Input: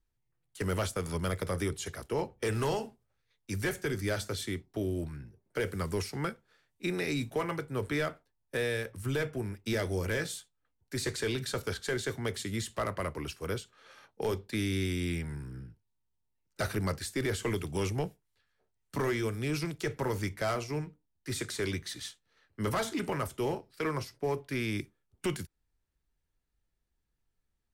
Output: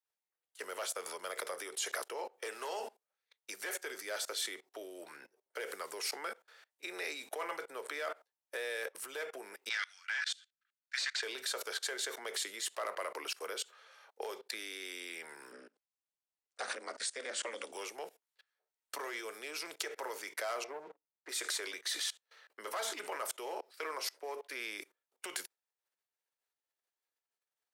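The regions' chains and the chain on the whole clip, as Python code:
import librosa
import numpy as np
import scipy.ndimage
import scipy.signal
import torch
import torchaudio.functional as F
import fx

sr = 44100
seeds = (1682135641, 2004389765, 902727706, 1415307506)

y = fx.chain(x, sr, fx.ellip_highpass(hz=1400.0, order=4, stop_db=80),
    fx.clip_hard(threshold_db=-33.0),
    fx.air_absorb(metres=130.0), at=(9.69, 11.23))
y = fx.chain(y, sr, fx.low_shelf(hz=130.0, db=3.5),
    fx.ring_mod(carrier_hz=120.0),
    fx.brickwall_lowpass(high_hz=10000.0), at=(15.52, 17.72))
y = fx.chain(y, sr, fx.lowpass(hz=1100.0, slope=12),
    fx.leveller(passes=2), at=(20.64, 21.29))
y = fx.level_steps(y, sr, step_db=24)
y = scipy.signal.sosfilt(scipy.signal.butter(4, 490.0, 'highpass', fs=sr, output='sos'), y)
y = y * librosa.db_to_amplitude(12.5)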